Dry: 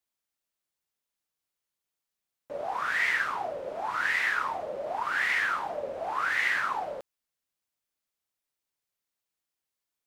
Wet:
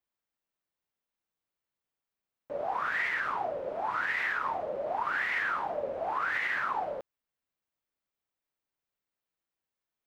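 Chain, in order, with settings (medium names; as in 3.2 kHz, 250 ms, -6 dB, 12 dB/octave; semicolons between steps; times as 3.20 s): peaking EQ 9.6 kHz -13 dB 2.3 oct; peak limiter -23 dBFS, peak gain reduction 5.5 dB; trim +1 dB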